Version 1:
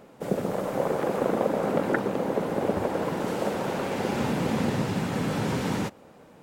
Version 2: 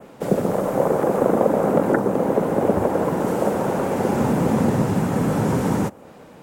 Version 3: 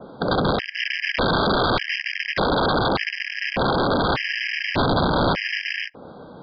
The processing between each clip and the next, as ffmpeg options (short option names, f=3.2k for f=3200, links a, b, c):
-filter_complex "[0:a]adynamicequalizer=threshold=0.00178:dfrequency=4400:dqfactor=1.3:tfrequency=4400:tqfactor=1.3:attack=5:release=100:ratio=0.375:range=3:mode=cutabove:tftype=bell,acrossover=split=190|1500|4900[a][b][c][d];[c]acompressor=threshold=-53dB:ratio=6[e];[a][b][e][d]amix=inputs=4:normalize=0,volume=7.5dB"
-af "aeval=exprs='(mod(6.31*val(0)+1,2)-1)/6.31':c=same,aresample=11025,aresample=44100,afftfilt=real='re*gt(sin(2*PI*0.84*pts/sr)*(1-2*mod(floor(b*sr/1024/1600),2)),0)':imag='im*gt(sin(2*PI*0.84*pts/sr)*(1-2*mod(floor(b*sr/1024/1600),2)),0)':win_size=1024:overlap=0.75,volume=3.5dB"